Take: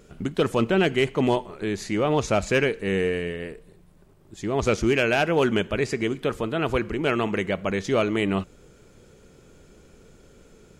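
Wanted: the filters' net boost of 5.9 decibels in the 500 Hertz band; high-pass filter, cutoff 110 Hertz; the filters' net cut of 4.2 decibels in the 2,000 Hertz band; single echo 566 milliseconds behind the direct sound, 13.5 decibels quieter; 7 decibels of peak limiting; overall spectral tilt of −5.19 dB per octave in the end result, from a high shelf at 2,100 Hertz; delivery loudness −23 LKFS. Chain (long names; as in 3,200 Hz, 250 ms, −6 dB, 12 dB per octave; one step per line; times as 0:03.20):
high-pass filter 110 Hz
parametric band 500 Hz +7.5 dB
parametric band 2,000 Hz −9 dB
high-shelf EQ 2,100 Hz +4.5 dB
brickwall limiter −12 dBFS
single-tap delay 566 ms −13.5 dB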